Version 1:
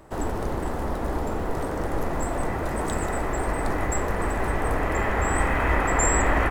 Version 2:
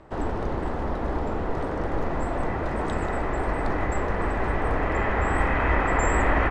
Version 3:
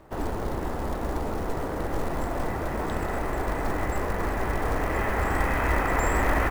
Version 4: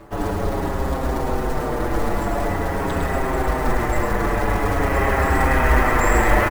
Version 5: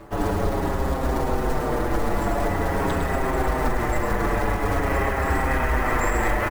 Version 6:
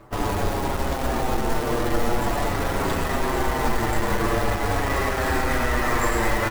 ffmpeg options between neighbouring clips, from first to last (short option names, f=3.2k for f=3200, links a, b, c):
-af "lowpass=3.9k"
-af "acrusher=bits=5:mode=log:mix=0:aa=0.000001,volume=-2dB"
-filter_complex "[0:a]aecho=1:1:106:0.531,areverse,acompressor=mode=upward:threshold=-28dB:ratio=2.5,areverse,asplit=2[a][b];[b]adelay=6.5,afreqshift=-0.46[c];[a][c]amix=inputs=2:normalize=1,volume=9dB"
-af "alimiter=limit=-12.5dB:level=0:latency=1:release=174"
-filter_complex "[0:a]asplit=2[a][b];[b]acrusher=bits=3:mix=0:aa=0.000001,volume=-4.5dB[c];[a][c]amix=inputs=2:normalize=0,flanger=delay=7.8:depth=1.3:regen=44:speed=0.38:shape=triangular"